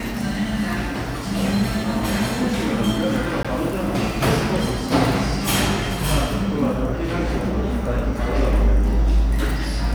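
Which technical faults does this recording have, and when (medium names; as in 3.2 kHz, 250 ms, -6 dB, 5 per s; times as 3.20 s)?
3.43–3.45 s: dropout 16 ms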